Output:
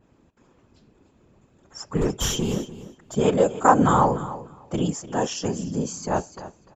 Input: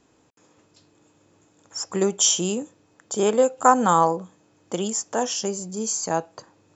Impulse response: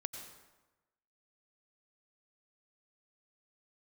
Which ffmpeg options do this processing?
-filter_complex "[0:a]asettb=1/sr,asplit=3[link_01][link_02][link_03];[link_01]atrim=end=1.974[link_04];[link_02]atrim=start=1.97:end=3.16,asetpts=PTS-STARTPTS,afade=type=in:duration=0.004:curve=qsin,afade=type=out:start_time=1.186:duration=0.004:curve=qsin,aeval=exprs='clip(val(0),-1,0.0668)':channel_layout=same[link_05];[link_03]atrim=start=3.156[link_06];[link_04][link_05]acrossfade=duration=0.004:curve1=hsin:curve2=qsin[link_07];[link_07][link_06]acrossfade=duration=0.004:curve1=qsin:curve2=hsin,bass=frequency=250:gain=9,treble=frequency=4000:gain=-10,afftfilt=real='hypot(re,im)*cos(2*PI*random(0))':imag='hypot(re,im)*sin(2*PI*random(1))':win_size=512:overlap=0.75,asplit=2[link_08][link_09];[link_09]aecho=0:1:296|592:0.178|0.0285[link_10];[link_08][link_10]amix=inputs=2:normalize=0,aresample=32000,aresample=44100,adynamicequalizer=threshold=0.0112:dfrequency=2100:dqfactor=0.7:tfrequency=2100:tqfactor=0.7:attack=5:release=100:ratio=0.375:range=2.5:mode=boostabove:tftype=highshelf,volume=4.5dB"

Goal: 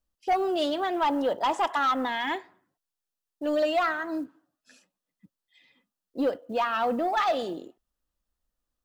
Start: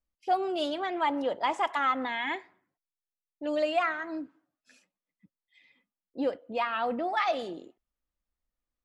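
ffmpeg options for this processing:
ffmpeg -i in.wav -af "equalizer=frequency=2200:width_type=o:width=0.3:gain=-9.5,acrusher=bits=9:mode=log:mix=0:aa=0.000001,aeval=exprs='0.158*sin(PI/2*1.58*val(0)/0.158)':channel_layout=same,volume=-3dB" out.wav

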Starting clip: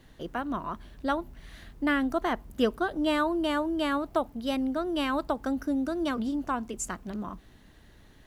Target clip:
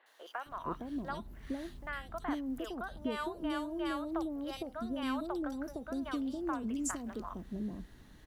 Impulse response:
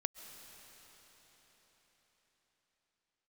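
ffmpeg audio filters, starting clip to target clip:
-filter_complex "[0:a]acompressor=threshold=-32dB:ratio=5,acrossover=split=570|2700[link_01][link_02][link_03];[link_03]adelay=60[link_04];[link_01]adelay=460[link_05];[link_05][link_02][link_04]amix=inputs=3:normalize=0,volume=-1dB"

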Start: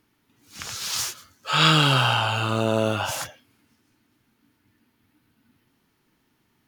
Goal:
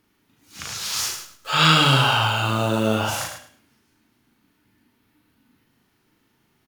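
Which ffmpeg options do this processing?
ffmpeg -i in.wav -filter_complex "[0:a]asettb=1/sr,asplit=3[link_01][link_02][link_03];[link_01]atrim=end=1.094[link_04];[link_02]atrim=start=1.09:end=3.19,asetpts=PTS-STARTPTS,afade=type=in:duration=0.004:curve=qsin,afade=type=out:start_time=2.096:duration=0.004:curve=qsin,acrusher=bits=8:dc=4:mix=0:aa=0.000001[link_05];[link_03]atrim=start=3.186[link_06];[link_04][link_05]acrossfade=duration=0.004:curve1=hsin:curve2=qsin[link_07];[link_07][link_06]acrossfade=duration=0.004:curve1=qsin:curve2=hsin,asplit=2[link_08][link_09];[link_09]adelay=37,volume=-3dB[link_10];[link_08][link_10]amix=inputs=2:normalize=0,aecho=1:1:105|210|315:0.398|0.0916|0.0211" out.wav

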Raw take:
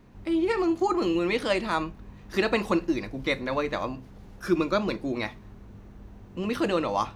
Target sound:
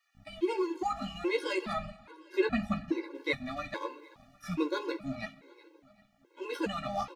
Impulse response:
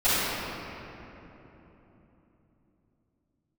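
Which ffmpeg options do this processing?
-filter_complex "[0:a]flanger=delay=8.6:depth=6.5:regen=-8:speed=0.5:shape=sinusoidal,acrossover=split=1200[link_01][link_02];[link_01]aeval=exprs='sgn(val(0))*max(abs(val(0))-0.00501,0)':channel_layout=same[link_03];[link_03][link_02]amix=inputs=2:normalize=0,asettb=1/sr,asplit=3[link_04][link_05][link_06];[link_04]atrim=end=1.734[link_07];[link_05]atrim=start=1.73:end=3.15,asetpts=PTS-STARTPTS,afade=type=in:duration=0.004:curve=qsin,afade=type=out:start_time=1.416:duration=0.004:curve=qsin,bass=frequency=250:gain=6,treble=frequency=4000:gain=-8[link_08];[link_06]atrim=start=3.146[link_09];[link_07][link_08]acrossfade=duration=0.004:curve1=hsin:curve2=qsin[link_10];[link_10][link_09]acrossfade=duration=0.004:curve1=qsin:curve2=hsin,asplit=3[link_11][link_12][link_13];[link_11]afade=type=out:start_time=5.25:duration=0.02[link_14];[link_12]aeval=exprs='val(0)*sin(2*PI*430*n/s)':channel_layout=same,afade=type=in:start_time=5.25:duration=0.02,afade=type=out:start_time=6.4:duration=0.02[link_15];[link_13]afade=type=in:start_time=6.4:duration=0.02[link_16];[link_14][link_15][link_16]amix=inputs=3:normalize=0,aecho=1:1:378|756|1134:0.0841|0.0412|0.0202,asplit=2[link_17][link_18];[1:a]atrim=start_sample=2205,afade=type=out:start_time=0.39:duration=0.01,atrim=end_sample=17640[link_19];[link_18][link_19]afir=irnorm=-1:irlink=0,volume=-36dB[link_20];[link_17][link_20]amix=inputs=2:normalize=0,afftfilt=real='re*gt(sin(2*PI*1.2*pts/sr)*(1-2*mod(floor(b*sr/1024/280),2)),0)':imag='im*gt(sin(2*PI*1.2*pts/sr)*(1-2*mod(floor(b*sr/1024/280),2)),0)':win_size=1024:overlap=0.75"

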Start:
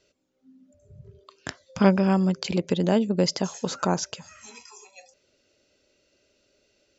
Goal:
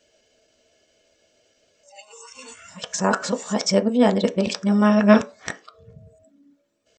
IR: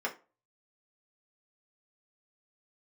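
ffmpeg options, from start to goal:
-filter_complex "[0:a]areverse,asplit=2[link_01][link_02];[1:a]atrim=start_sample=2205,lowshelf=frequency=210:gain=-3.5[link_03];[link_02][link_03]afir=irnorm=-1:irlink=0,volume=-7dB[link_04];[link_01][link_04]amix=inputs=2:normalize=0,asetrate=48091,aresample=44100,atempo=0.917004,volume=1.5dB"

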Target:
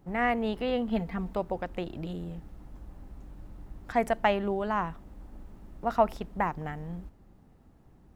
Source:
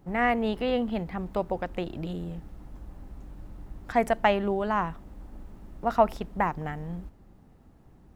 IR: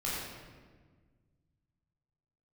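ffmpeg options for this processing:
-filter_complex "[0:a]asettb=1/sr,asplit=3[link_01][link_02][link_03];[link_01]atrim=end=0.904[link_04];[link_02]atrim=start=0.9:end=1.33,asetpts=PTS-STARTPTS,afade=type=in:duration=0.004:curve=qsin,afade=type=out:start_time=0.426:duration=0.004:curve=qsin,aecho=1:1:4.4:0.75,atrim=end_sample=18963[link_05];[link_03]atrim=start=1.326[link_06];[link_04][link_05]acrossfade=duration=0.004:curve1=hsin:curve2=qsin[link_07];[link_07][link_06]acrossfade=duration=0.004:curve1=qsin:curve2=hsin,volume=-2.5dB"

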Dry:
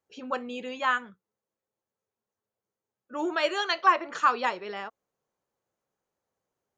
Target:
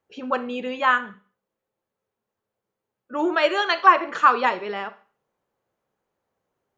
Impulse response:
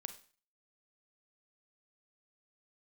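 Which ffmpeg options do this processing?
-filter_complex "[0:a]asplit=2[link_01][link_02];[1:a]atrim=start_sample=2205,lowpass=3900[link_03];[link_02][link_03]afir=irnorm=-1:irlink=0,volume=5.5dB[link_04];[link_01][link_04]amix=inputs=2:normalize=0"

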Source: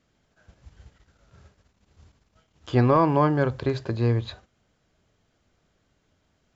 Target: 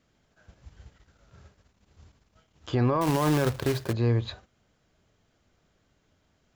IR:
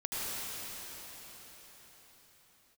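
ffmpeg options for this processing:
-filter_complex "[0:a]alimiter=limit=-16.5dB:level=0:latency=1,asettb=1/sr,asplit=3[link_01][link_02][link_03];[link_01]atrim=end=3.014[link_04];[link_02]atrim=start=3.01:end=3.93,asetpts=PTS-STARTPTS,afade=type=in:duration=0.004:curve=qsin,afade=type=out:start_time=0.916:duration=0.004:curve=qsin,acrusher=bits=2:mode=log:mix=0:aa=0.000001[link_05];[link_03]atrim=start=3.926[link_06];[link_04][link_05]acrossfade=duration=0.004:curve1=hsin:curve2=qsin[link_07];[link_07][link_06]acrossfade=duration=0.004:curve1=qsin:curve2=hsin"

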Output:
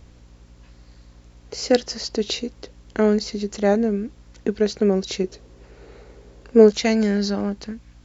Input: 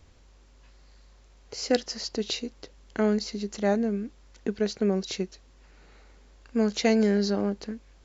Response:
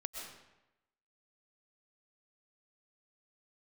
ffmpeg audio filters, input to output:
-af "asetnsamples=nb_out_samples=441:pad=0,asendcmd='5.24 equalizer g 13;6.71 equalizer g -4.5',equalizer=frequency=430:width=1.2:gain=3,aeval=exprs='val(0)+0.00224*(sin(2*PI*60*n/s)+sin(2*PI*2*60*n/s)/2+sin(2*PI*3*60*n/s)/3+sin(2*PI*4*60*n/s)/4+sin(2*PI*5*60*n/s)/5)':channel_layout=same,volume=4.5dB"

